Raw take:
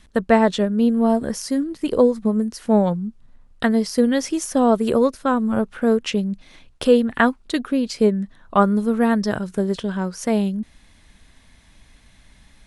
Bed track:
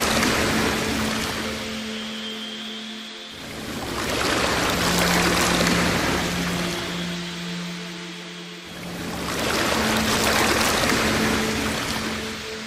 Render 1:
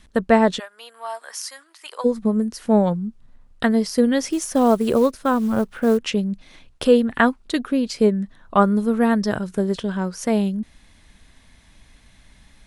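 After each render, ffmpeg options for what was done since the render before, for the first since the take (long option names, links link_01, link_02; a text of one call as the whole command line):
ffmpeg -i in.wav -filter_complex "[0:a]asplit=3[link_01][link_02][link_03];[link_01]afade=type=out:start_time=0.58:duration=0.02[link_04];[link_02]highpass=frequency=900:width=0.5412,highpass=frequency=900:width=1.3066,afade=type=in:start_time=0.58:duration=0.02,afade=type=out:start_time=2.04:duration=0.02[link_05];[link_03]afade=type=in:start_time=2.04:duration=0.02[link_06];[link_04][link_05][link_06]amix=inputs=3:normalize=0,asplit=3[link_07][link_08][link_09];[link_07]afade=type=out:start_time=4.29:duration=0.02[link_10];[link_08]acrusher=bits=7:mode=log:mix=0:aa=0.000001,afade=type=in:start_time=4.29:duration=0.02,afade=type=out:start_time=5.97:duration=0.02[link_11];[link_09]afade=type=in:start_time=5.97:duration=0.02[link_12];[link_10][link_11][link_12]amix=inputs=3:normalize=0" out.wav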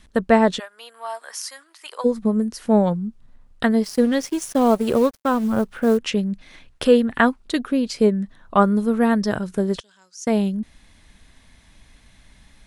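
ffmpeg -i in.wav -filter_complex "[0:a]asplit=3[link_01][link_02][link_03];[link_01]afade=type=out:start_time=3.82:duration=0.02[link_04];[link_02]aeval=exprs='sgn(val(0))*max(abs(val(0))-0.0141,0)':channel_layout=same,afade=type=in:start_time=3.82:duration=0.02,afade=type=out:start_time=5.43:duration=0.02[link_05];[link_03]afade=type=in:start_time=5.43:duration=0.02[link_06];[link_04][link_05][link_06]amix=inputs=3:normalize=0,asettb=1/sr,asplit=3[link_07][link_08][link_09];[link_07]atrim=end=6.124[link_10];[link_08]atrim=start=6.12:end=7.06,asetpts=PTS-STARTPTS,afade=type=in:duration=0.004:curve=qsin,afade=type=out:start_time=0.936:duration=0.004:curve=qsin,equalizer=frequency=1800:width_type=o:width=0.76:gain=5[link_11];[link_09]atrim=start=7.056[link_12];[link_10][link_11]acrossfade=duration=0.004:curve1=hsin:curve2=qsin[link_13];[link_13][link_12]acrossfade=duration=0.004:curve1=qsin:curve2=hsin,asettb=1/sr,asplit=3[link_14][link_15][link_16];[link_14]atrim=end=9.804[link_17];[link_15]atrim=start=9.8:end=10.27,asetpts=PTS-STARTPTS,afade=type=in:duration=0.004:curve=qsin,afade=type=out:start_time=0.466:duration=0.004:curve=qsin,bandpass=frequency=6400:width_type=q:width=2.9[link_18];[link_16]atrim=start=10.266[link_19];[link_17][link_18]acrossfade=duration=0.004:curve1=hsin:curve2=qsin[link_20];[link_20][link_19]acrossfade=duration=0.004:curve1=qsin:curve2=hsin" out.wav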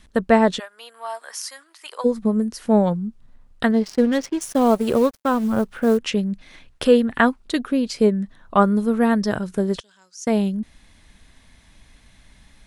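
ffmpeg -i in.wav -filter_complex "[0:a]asettb=1/sr,asplit=3[link_01][link_02][link_03];[link_01]atrim=end=3.714[link_04];[link_02]atrim=start=3.71:end=4.41,asetpts=PTS-STARTPTS,afade=type=in:duration=0.004:curve=qsin,afade=type=out:start_time=0.696:duration=0.004:curve=qsin,adynamicsmooth=sensitivity=6.5:basefreq=2000[link_05];[link_03]atrim=start=4.406[link_06];[link_04][link_05]acrossfade=duration=0.004:curve1=hsin:curve2=qsin[link_07];[link_07][link_06]acrossfade=duration=0.004:curve1=qsin:curve2=hsin" out.wav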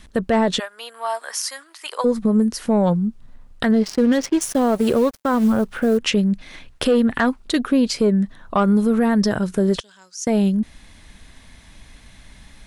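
ffmpeg -i in.wav -af "acontrast=55,alimiter=limit=-9.5dB:level=0:latency=1:release=61" out.wav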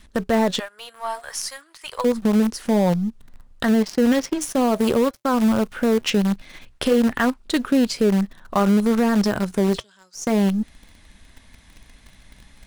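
ffmpeg -i in.wav -filter_complex "[0:a]flanger=delay=3.2:depth=2.2:regen=-80:speed=0.53:shape=sinusoidal,asplit=2[link_01][link_02];[link_02]acrusher=bits=4:dc=4:mix=0:aa=0.000001,volume=-8.5dB[link_03];[link_01][link_03]amix=inputs=2:normalize=0" out.wav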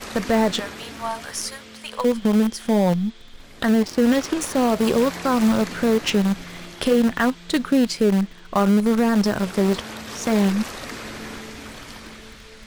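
ffmpeg -i in.wav -i bed.wav -filter_complex "[1:a]volume=-13.5dB[link_01];[0:a][link_01]amix=inputs=2:normalize=0" out.wav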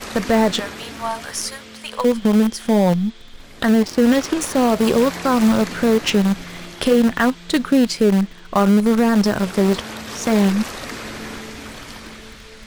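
ffmpeg -i in.wav -af "volume=3dB" out.wav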